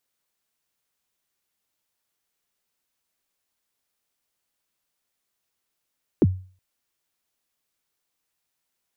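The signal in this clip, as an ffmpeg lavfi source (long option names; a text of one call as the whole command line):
ffmpeg -f lavfi -i "aevalsrc='0.316*pow(10,-3*t/0.4)*sin(2*PI*(430*0.037/log(93/430)*(exp(log(93/430)*min(t,0.037)/0.037)-1)+93*max(t-0.037,0)))':duration=0.37:sample_rate=44100" out.wav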